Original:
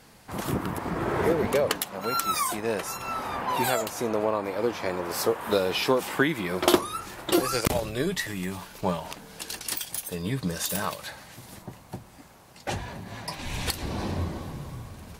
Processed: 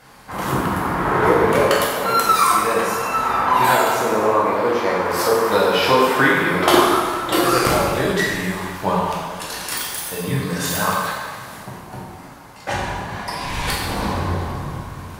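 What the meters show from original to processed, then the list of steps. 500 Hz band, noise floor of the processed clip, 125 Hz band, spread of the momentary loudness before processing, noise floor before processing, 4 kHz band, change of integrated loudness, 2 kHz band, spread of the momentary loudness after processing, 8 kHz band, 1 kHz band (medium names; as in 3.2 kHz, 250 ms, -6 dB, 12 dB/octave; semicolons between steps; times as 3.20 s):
+8.5 dB, -38 dBFS, +7.5 dB, 14 LU, -51 dBFS, +7.5 dB, +9.5 dB, +12.0 dB, 13 LU, +6.0 dB, +13.0 dB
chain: peaking EQ 1.2 kHz +7.5 dB 1.8 oct; plate-style reverb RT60 1.7 s, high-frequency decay 0.8×, DRR -5 dB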